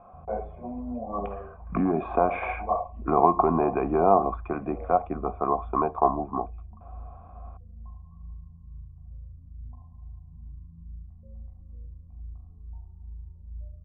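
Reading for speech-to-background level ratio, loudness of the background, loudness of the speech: 19.5 dB, -45.5 LUFS, -26.0 LUFS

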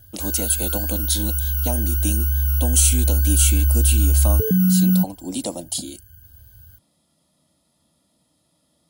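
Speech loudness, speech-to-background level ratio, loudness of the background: -23.5 LUFS, -4.0 dB, -19.5 LUFS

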